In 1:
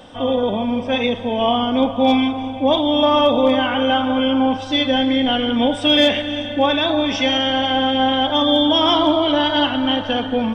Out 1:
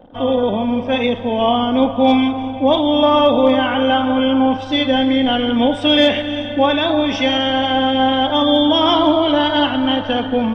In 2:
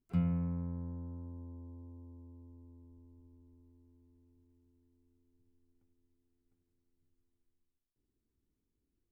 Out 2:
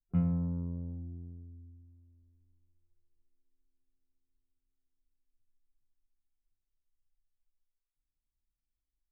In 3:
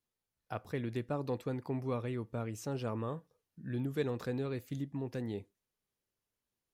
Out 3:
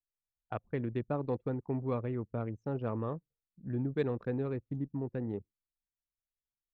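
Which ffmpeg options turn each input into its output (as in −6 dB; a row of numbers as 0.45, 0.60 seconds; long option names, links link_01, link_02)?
-af "aemphasis=mode=reproduction:type=cd,anlmdn=0.631,volume=2dB"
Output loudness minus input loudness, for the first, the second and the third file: +1.5, +4.0, +2.0 LU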